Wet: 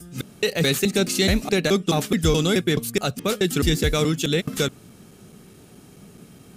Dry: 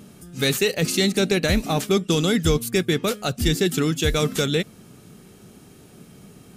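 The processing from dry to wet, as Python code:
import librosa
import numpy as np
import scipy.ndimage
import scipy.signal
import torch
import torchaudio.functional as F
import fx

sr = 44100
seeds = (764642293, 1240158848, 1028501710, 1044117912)

y = fx.block_reorder(x, sr, ms=213.0, group=2)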